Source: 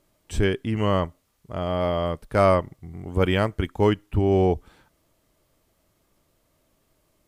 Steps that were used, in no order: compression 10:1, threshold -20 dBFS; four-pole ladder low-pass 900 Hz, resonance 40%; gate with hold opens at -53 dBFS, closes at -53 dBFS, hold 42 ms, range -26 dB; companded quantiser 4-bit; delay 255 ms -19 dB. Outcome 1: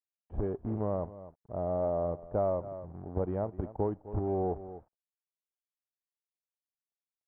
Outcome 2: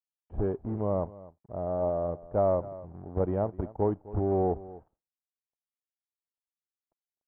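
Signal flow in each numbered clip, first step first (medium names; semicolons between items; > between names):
delay > compression > companded quantiser > four-pole ladder low-pass > gate with hold; companded quantiser > delay > gate with hold > four-pole ladder low-pass > compression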